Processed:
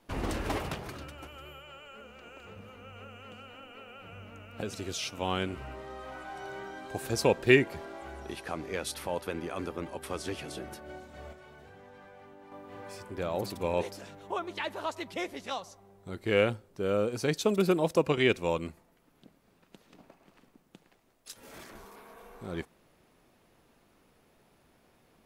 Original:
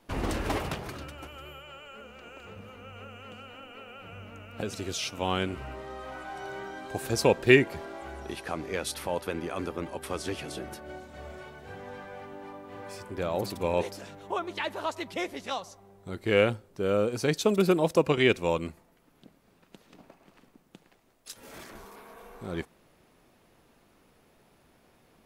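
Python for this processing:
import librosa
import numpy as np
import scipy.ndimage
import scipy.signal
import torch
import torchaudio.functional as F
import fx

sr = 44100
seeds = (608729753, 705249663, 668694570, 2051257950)

y = fx.level_steps(x, sr, step_db=10, at=(11.33, 12.52))
y = F.gain(torch.from_numpy(y), -2.5).numpy()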